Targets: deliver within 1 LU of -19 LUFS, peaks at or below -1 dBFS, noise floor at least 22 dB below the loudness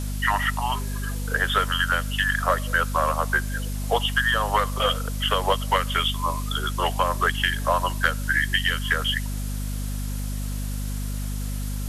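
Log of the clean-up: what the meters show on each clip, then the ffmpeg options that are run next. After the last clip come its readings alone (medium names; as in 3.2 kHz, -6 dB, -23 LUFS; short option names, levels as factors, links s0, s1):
hum 50 Hz; highest harmonic 250 Hz; hum level -26 dBFS; noise floor -28 dBFS; noise floor target -47 dBFS; loudness -24.5 LUFS; peak level -6.0 dBFS; loudness target -19.0 LUFS
-> -af "bandreject=f=50:t=h:w=6,bandreject=f=100:t=h:w=6,bandreject=f=150:t=h:w=6,bandreject=f=200:t=h:w=6,bandreject=f=250:t=h:w=6"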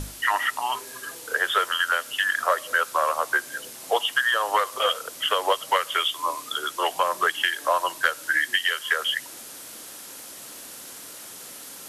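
hum not found; noise floor -41 dBFS; noise floor target -46 dBFS
-> -af "afftdn=nr=6:nf=-41"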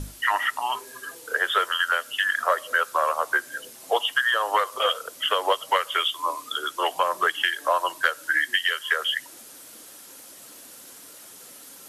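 noise floor -46 dBFS; loudness -24.0 LUFS; peak level -6.5 dBFS; loudness target -19.0 LUFS
-> -af "volume=1.78"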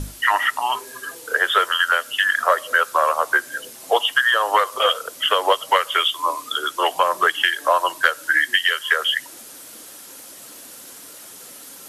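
loudness -19.0 LUFS; peak level -1.5 dBFS; noise floor -41 dBFS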